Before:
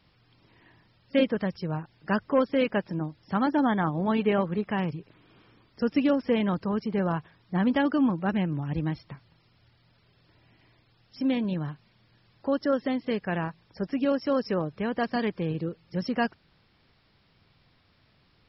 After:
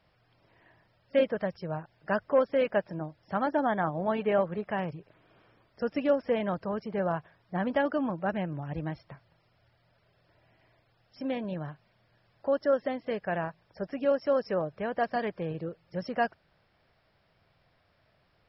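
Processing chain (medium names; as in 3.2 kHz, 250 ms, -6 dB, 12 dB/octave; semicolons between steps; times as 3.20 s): fifteen-band graphic EQ 250 Hz -4 dB, 630 Hz +10 dB, 1.6 kHz +4 dB, 4 kHz -4 dB; trim -5.5 dB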